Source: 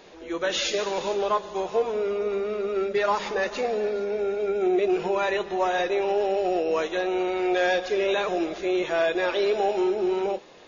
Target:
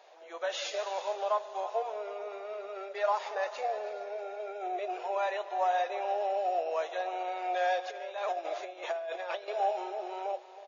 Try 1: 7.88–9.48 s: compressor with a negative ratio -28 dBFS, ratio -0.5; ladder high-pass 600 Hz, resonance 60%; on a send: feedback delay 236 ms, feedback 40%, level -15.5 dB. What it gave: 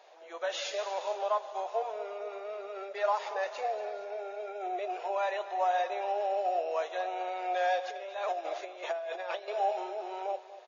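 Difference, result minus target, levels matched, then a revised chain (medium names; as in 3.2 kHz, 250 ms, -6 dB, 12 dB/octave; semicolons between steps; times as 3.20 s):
echo 84 ms early
7.88–9.48 s: compressor with a negative ratio -28 dBFS, ratio -0.5; ladder high-pass 600 Hz, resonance 60%; on a send: feedback delay 320 ms, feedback 40%, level -15.5 dB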